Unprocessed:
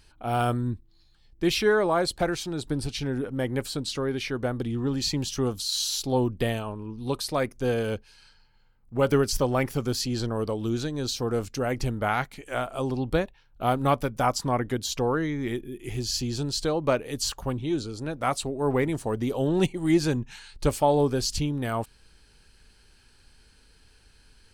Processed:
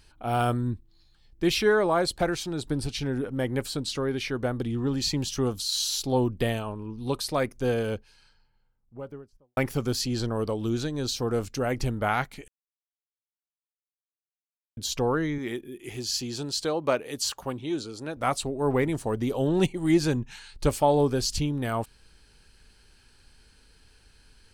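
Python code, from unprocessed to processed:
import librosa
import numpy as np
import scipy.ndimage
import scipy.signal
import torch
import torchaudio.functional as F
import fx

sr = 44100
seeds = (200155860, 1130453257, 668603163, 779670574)

y = fx.studio_fade_out(x, sr, start_s=7.56, length_s=2.01)
y = fx.highpass(y, sr, hz=280.0, slope=6, at=(15.38, 18.17))
y = fx.edit(y, sr, fx.silence(start_s=12.48, length_s=2.29), tone=tone)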